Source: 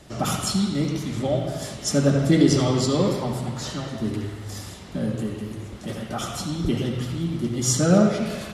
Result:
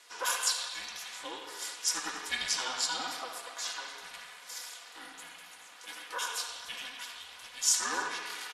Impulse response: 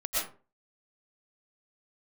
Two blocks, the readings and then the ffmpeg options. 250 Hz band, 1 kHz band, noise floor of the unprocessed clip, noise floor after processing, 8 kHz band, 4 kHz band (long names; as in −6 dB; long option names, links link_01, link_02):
−32.0 dB, −6.0 dB, −39 dBFS, −52 dBFS, −2.5 dB, −2.0 dB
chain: -filter_complex "[0:a]highpass=frequency=950:width=0.5412,highpass=frequency=950:width=1.3066,aeval=exprs='val(0)*sin(2*PI*250*n/s)':channel_layout=same,aecho=1:1:4.1:0.51,asplit=2[link_01][link_02];[link_02]aecho=0:1:280:0.0708[link_03];[link_01][link_03]amix=inputs=2:normalize=0"